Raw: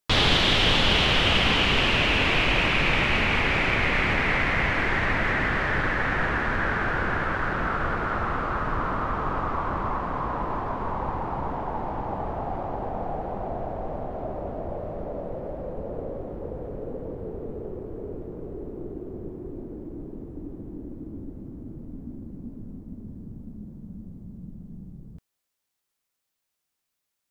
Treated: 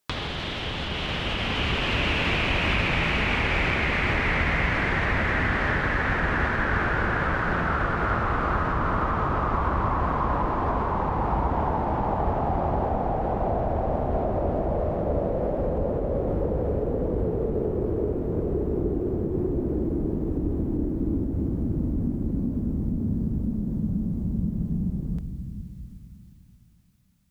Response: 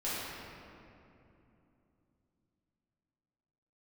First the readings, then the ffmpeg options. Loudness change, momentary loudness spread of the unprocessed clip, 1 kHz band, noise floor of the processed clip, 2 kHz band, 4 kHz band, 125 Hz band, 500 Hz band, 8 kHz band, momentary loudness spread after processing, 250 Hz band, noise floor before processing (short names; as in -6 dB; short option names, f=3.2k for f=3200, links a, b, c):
-1.0 dB, 21 LU, +1.5 dB, -44 dBFS, -1.5 dB, -7.0 dB, +5.0 dB, +3.5 dB, n/a, 5 LU, +5.0 dB, -82 dBFS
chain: -filter_complex "[0:a]acrossover=split=2600[a][b];[b]alimiter=limit=-22dB:level=0:latency=1[c];[a][c]amix=inputs=2:normalize=0,acompressor=threshold=-36dB:ratio=5,asplit=2[d][e];[e]aemphasis=mode=reproduction:type=bsi[f];[1:a]atrim=start_sample=2205[g];[f][g]afir=irnorm=-1:irlink=0,volume=-17dB[h];[d][h]amix=inputs=2:normalize=0,dynaudnorm=f=340:g=9:m=7dB,highpass=41,volume=5dB"